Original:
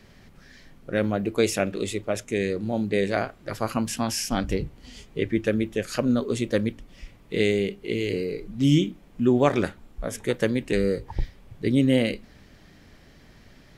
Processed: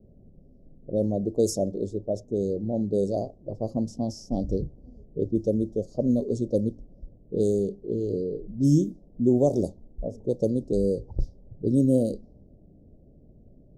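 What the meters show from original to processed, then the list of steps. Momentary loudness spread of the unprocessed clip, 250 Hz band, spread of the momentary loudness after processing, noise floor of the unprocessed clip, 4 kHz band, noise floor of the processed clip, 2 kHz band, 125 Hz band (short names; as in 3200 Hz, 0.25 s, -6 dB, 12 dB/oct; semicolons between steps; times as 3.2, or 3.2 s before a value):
11 LU, -1.0 dB, 11 LU, -53 dBFS, under -10 dB, -54 dBFS, under -40 dB, -0.5 dB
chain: low-pass opened by the level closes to 570 Hz, open at -17.5 dBFS; elliptic band-stop 620–5500 Hz, stop band 60 dB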